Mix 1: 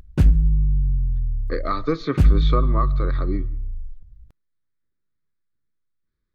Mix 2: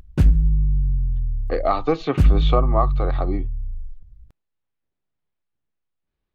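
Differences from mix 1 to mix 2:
speech: remove static phaser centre 2.8 kHz, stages 6; reverb: off

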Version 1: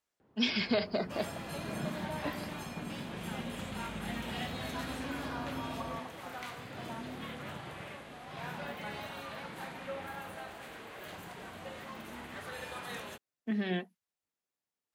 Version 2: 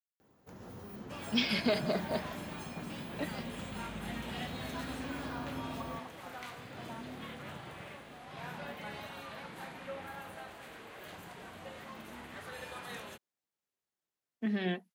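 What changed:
speech: entry +0.95 s; first sound: remove distance through air 250 m; reverb: off

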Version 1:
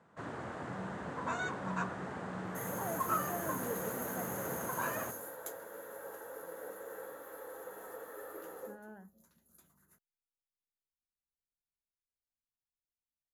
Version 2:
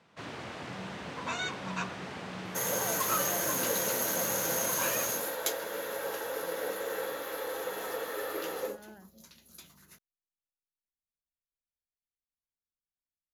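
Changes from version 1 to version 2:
first sound: remove low-pass 7.4 kHz 12 dB/octave; second sound +10.5 dB; master: add high-order bell 3.6 kHz +13 dB

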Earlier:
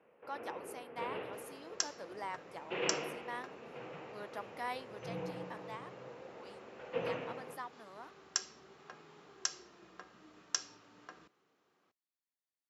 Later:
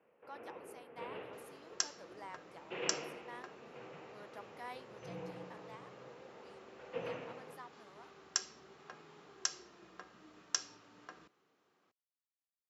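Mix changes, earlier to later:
speech -7.5 dB; first sound -4.5 dB

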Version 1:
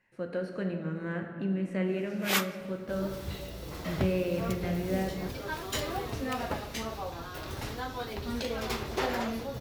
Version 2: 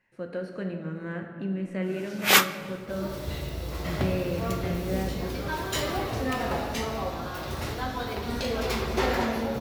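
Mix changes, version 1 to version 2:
first sound +10.0 dB; second sound: send on

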